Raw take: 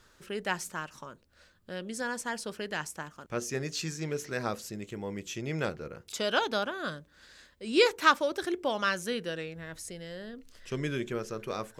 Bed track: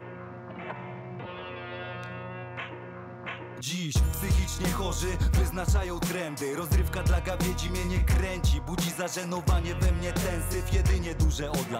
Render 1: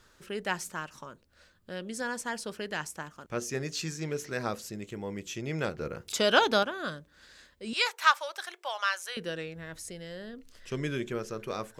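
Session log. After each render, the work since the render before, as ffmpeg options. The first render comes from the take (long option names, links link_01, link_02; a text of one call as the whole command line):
ffmpeg -i in.wav -filter_complex "[0:a]asettb=1/sr,asplit=3[link_01][link_02][link_03];[link_01]atrim=end=5.784[link_04];[link_02]atrim=start=5.78:end=6.63,asetpts=PTS-STARTPTS,afade=type=in:duration=0.004:curve=qsin,afade=type=out:start_time=0.846:duration=0.004:curve=qsin,acontrast=34[link_05];[link_03]atrim=start=6.626[link_06];[link_04][link_05]acrossfade=duration=0.004:curve1=hsin:curve2=qsin[link_07];[link_07][link_06]acrossfade=duration=0.004:curve1=qsin:curve2=hsin,asettb=1/sr,asplit=3[link_08][link_09][link_10];[link_08]atrim=end=7.734[link_11];[link_09]atrim=start=7.73:end=9.17,asetpts=PTS-STARTPTS,afade=type=in:duration=0.004:curve=qsin,afade=type=out:start_time=1.436:duration=0.004:curve=qsin,highpass=frequency=730:width=0.5412,highpass=frequency=730:width=1.3066[link_12];[link_10]atrim=start=9.166[link_13];[link_11][link_12]acrossfade=duration=0.004:curve1=hsin:curve2=qsin[link_14];[link_14][link_13]acrossfade=duration=0.004:curve1=qsin:curve2=hsin" out.wav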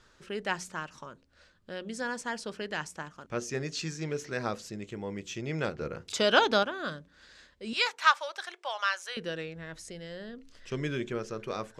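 ffmpeg -i in.wav -af "lowpass=7100,bandreject=frequency=90.57:width_type=h:width=4,bandreject=frequency=181.14:width_type=h:width=4,bandreject=frequency=271.71:width_type=h:width=4" out.wav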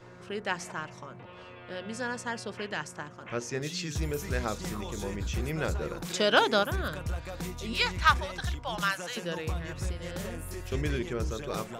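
ffmpeg -i in.wav -i bed.wav -filter_complex "[1:a]volume=-9dB[link_01];[0:a][link_01]amix=inputs=2:normalize=0" out.wav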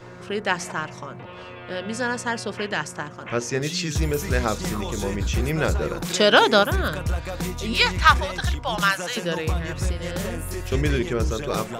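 ffmpeg -i in.wav -af "volume=8.5dB,alimiter=limit=-3dB:level=0:latency=1" out.wav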